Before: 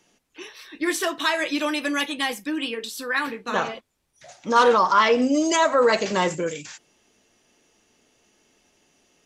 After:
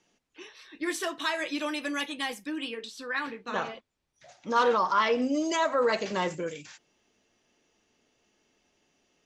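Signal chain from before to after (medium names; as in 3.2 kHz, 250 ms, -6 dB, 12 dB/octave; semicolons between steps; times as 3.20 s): low-pass 7.3 kHz 12 dB/octave, from 0.83 s 12 kHz, from 2.81 s 6.1 kHz; trim -7 dB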